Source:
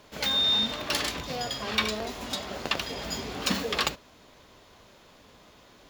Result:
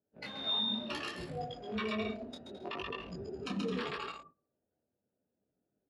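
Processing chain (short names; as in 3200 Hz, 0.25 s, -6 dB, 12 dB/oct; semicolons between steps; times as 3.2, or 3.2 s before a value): Wiener smoothing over 41 samples; steep low-pass 11000 Hz 48 dB/oct; bell 7100 Hz -10.5 dB 1.9 oct; bouncing-ball echo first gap 0.13 s, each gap 0.65×, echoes 5; spectral noise reduction 11 dB; de-hum 167 Hz, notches 7; gate -56 dBFS, range -16 dB; HPF 120 Hz 12 dB/oct; high shelf 4900 Hz -11 dB; limiter -27 dBFS, peak gain reduction 12 dB; detuned doubles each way 24 cents; gain +4.5 dB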